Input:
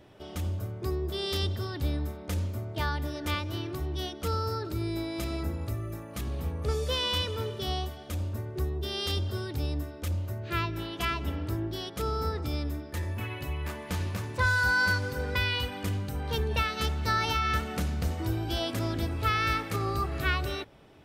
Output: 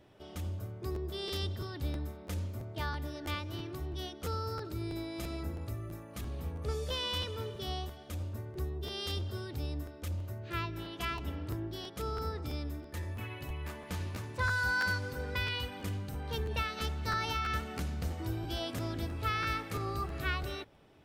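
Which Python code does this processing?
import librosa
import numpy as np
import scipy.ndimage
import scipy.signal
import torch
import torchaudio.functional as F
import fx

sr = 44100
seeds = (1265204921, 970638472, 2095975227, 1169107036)

y = fx.buffer_crackle(x, sr, first_s=0.94, period_s=0.33, block=512, kind='repeat')
y = y * 10.0 ** (-6.0 / 20.0)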